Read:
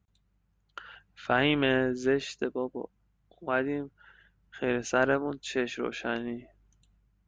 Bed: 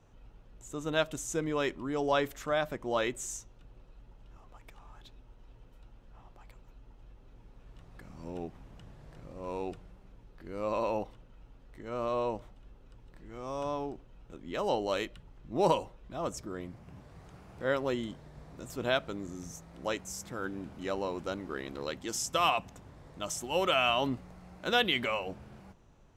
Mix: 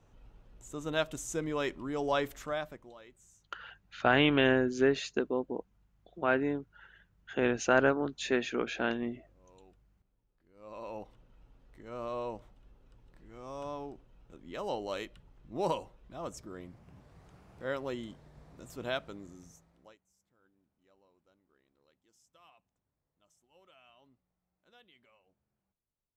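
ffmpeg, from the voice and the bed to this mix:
-filter_complex "[0:a]adelay=2750,volume=1[s0];[1:a]volume=6.31,afade=t=out:st=2.36:d=0.58:silence=0.0841395,afade=t=in:st=10.54:d=0.73:silence=0.125893,afade=t=out:st=18.97:d=1.01:silence=0.0354813[s1];[s0][s1]amix=inputs=2:normalize=0"

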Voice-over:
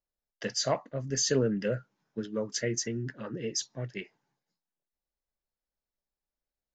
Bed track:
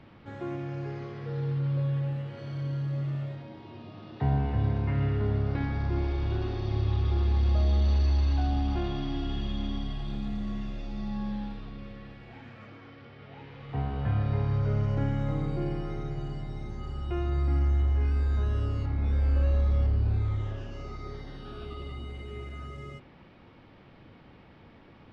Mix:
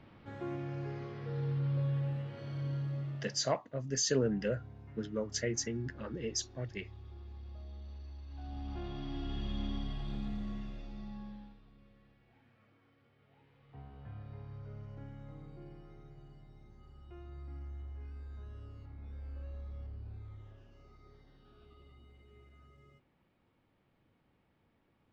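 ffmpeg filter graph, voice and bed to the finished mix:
-filter_complex "[0:a]adelay=2800,volume=0.668[s0];[1:a]volume=5.01,afade=t=out:st=2.75:d=0.89:silence=0.112202,afade=t=in:st=8.28:d=1.31:silence=0.11885,afade=t=out:st=10.21:d=1.38:silence=0.177828[s1];[s0][s1]amix=inputs=2:normalize=0"

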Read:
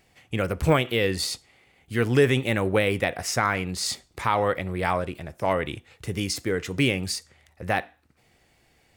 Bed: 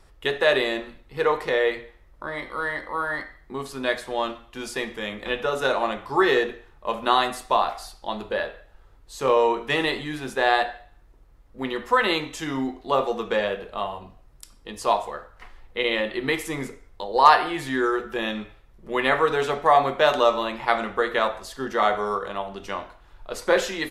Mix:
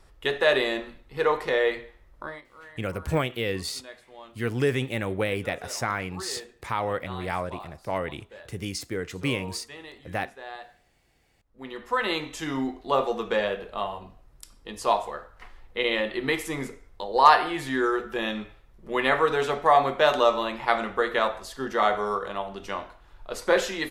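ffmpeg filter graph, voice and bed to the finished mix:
-filter_complex "[0:a]adelay=2450,volume=0.562[s0];[1:a]volume=7.08,afade=t=out:st=2.22:d=0.2:silence=0.11885,afade=t=in:st=11.38:d=1.08:silence=0.11885[s1];[s0][s1]amix=inputs=2:normalize=0"

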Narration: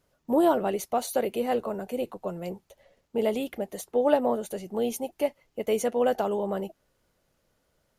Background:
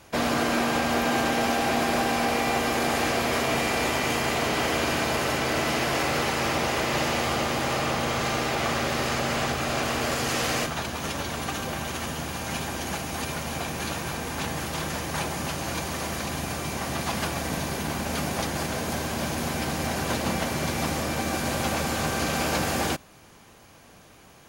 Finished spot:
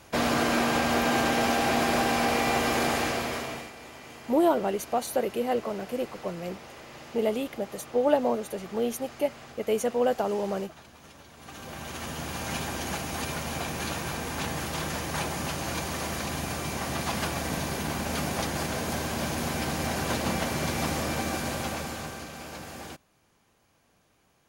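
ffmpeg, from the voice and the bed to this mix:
-filter_complex "[0:a]adelay=4000,volume=0.944[s0];[1:a]volume=7.94,afade=t=out:st=2.81:d=0.91:silence=0.105925,afade=t=in:st=11.36:d=1.05:silence=0.11885,afade=t=out:st=21.13:d=1.16:silence=0.211349[s1];[s0][s1]amix=inputs=2:normalize=0"

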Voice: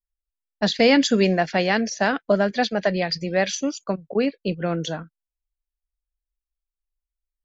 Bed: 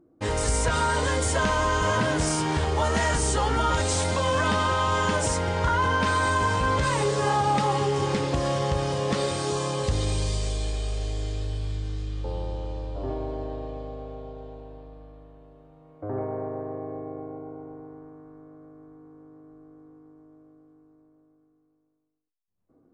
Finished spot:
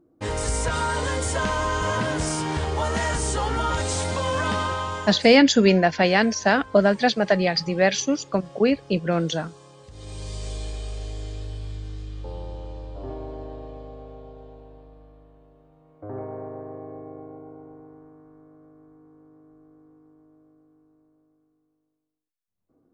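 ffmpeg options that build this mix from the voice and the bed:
-filter_complex "[0:a]adelay=4450,volume=1.26[s0];[1:a]volume=6.68,afade=t=out:st=4.58:d=0.71:silence=0.1,afade=t=in:st=9.91:d=0.63:silence=0.133352[s1];[s0][s1]amix=inputs=2:normalize=0"

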